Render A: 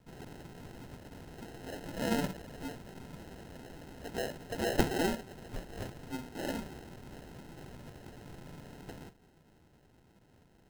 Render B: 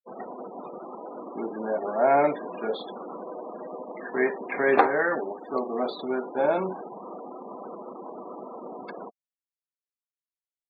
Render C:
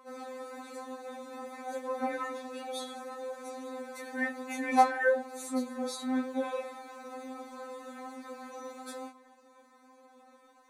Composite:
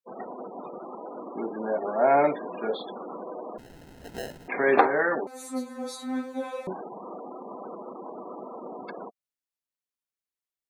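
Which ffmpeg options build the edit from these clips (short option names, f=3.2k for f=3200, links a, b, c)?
-filter_complex "[1:a]asplit=3[a][b][c];[a]atrim=end=3.582[d];[0:a]atrim=start=3.578:end=4.482[e];[b]atrim=start=4.478:end=5.272[f];[2:a]atrim=start=5.268:end=6.672[g];[c]atrim=start=6.668[h];[d][e]acrossfade=d=0.004:c1=hsin:c2=hsin[i];[i][f]acrossfade=d=0.004:c1=hsin:c2=hsin[j];[j][g]acrossfade=d=0.004:c1=hsin:c2=hsin[k];[k][h]acrossfade=d=0.004:c1=hsin:c2=hsin"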